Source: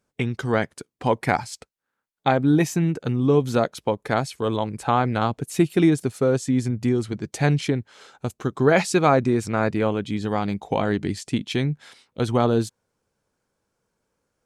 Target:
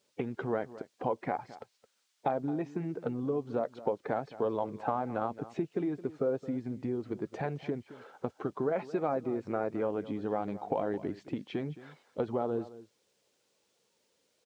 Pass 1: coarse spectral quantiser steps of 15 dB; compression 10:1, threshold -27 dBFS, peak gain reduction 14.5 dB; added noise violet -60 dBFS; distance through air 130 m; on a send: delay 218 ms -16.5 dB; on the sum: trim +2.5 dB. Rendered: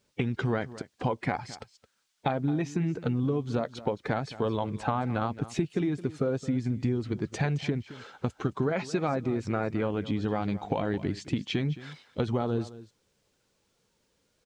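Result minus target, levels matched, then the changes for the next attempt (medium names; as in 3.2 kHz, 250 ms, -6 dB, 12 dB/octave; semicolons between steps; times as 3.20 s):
500 Hz band -3.5 dB
add after compression: band-pass filter 580 Hz, Q 0.9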